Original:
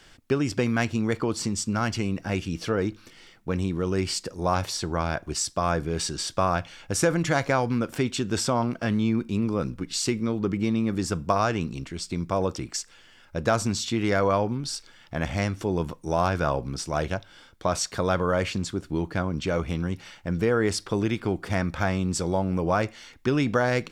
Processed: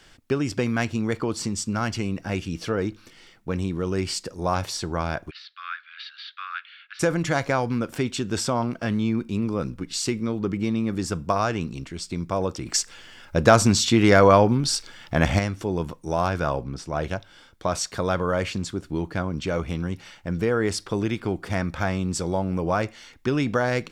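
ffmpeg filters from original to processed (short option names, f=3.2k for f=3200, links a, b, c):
-filter_complex "[0:a]asplit=3[a][b][c];[a]afade=t=out:st=5.29:d=0.02[d];[b]asuperpass=centerf=2300:order=12:qfactor=0.81,afade=t=in:st=5.29:d=0.02,afade=t=out:st=6.99:d=0.02[e];[c]afade=t=in:st=6.99:d=0.02[f];[d][e][f]amix=inputs=3:normalize=0,asplit=3[g][h][i];[g]afade=t=out:st=16.62:d=0.02[j];[h]highshelf=f=3.8k:g=-10.5,afade=t=in:st=16.62:d=0.02,afade=t=out:st=17.02:d=0.02[k];[i]afade=t=in:st=17.02:d=0.02[l];[j][k][l]amix=inputs=3:normalize=0,asplit=3[m][n][o];[m]atrim=end=12.662[p];[n]atrim=start=12.658:end=15.392,asetpts=PTS-STARTPTS,volume=8dB[q];[o]atrim=start=15.388[r];[p][q]acrossfade=d=0.004:c1=hsin:c2=hsin[s];[s][r]acrossfade=d=0.004:c1=hsin:c2=hsin"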